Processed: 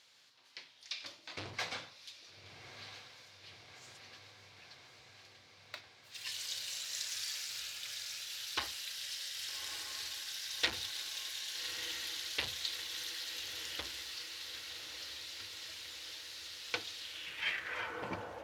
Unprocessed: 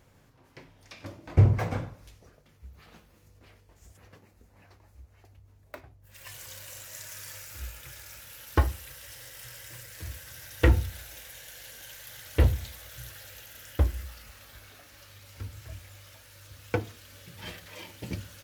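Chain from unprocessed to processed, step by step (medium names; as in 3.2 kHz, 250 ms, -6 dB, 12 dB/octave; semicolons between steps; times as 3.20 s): high-pass 67 Hz; echo that smears into a reverb 1237 ms, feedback 74%, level -11 dB; overload inside the chain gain 21 dB; band-pass sweep 4.1 kHz -> 770 Hz, 16.97–18.32 s; trim +12 dB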